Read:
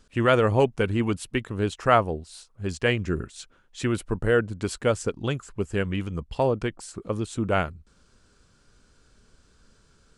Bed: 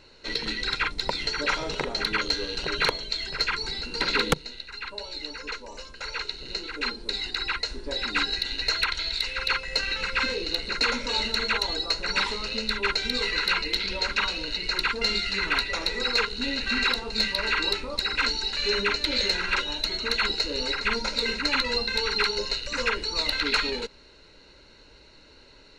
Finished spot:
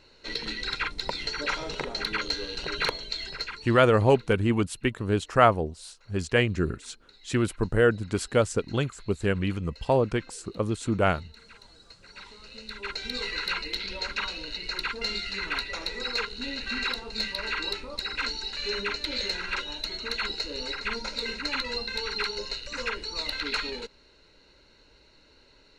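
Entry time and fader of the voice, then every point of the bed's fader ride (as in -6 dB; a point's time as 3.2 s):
3.50 s, +0.5 dB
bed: 3.28 s -3.5 dB
4.02 s -26.5 dB
11.85 s -26.5 dB
13.14 s -5.5 dB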